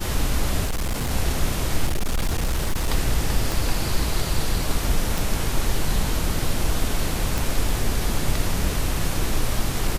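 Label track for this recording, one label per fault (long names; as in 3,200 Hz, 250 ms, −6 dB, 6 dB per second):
0.650000	1.110000	clipping −20.5 dBFS
1.860000	2.880000	clipping −18 dBFS
3.520000	3.520000	click
5.180000	5.180000	click
7.380000	7.380000	click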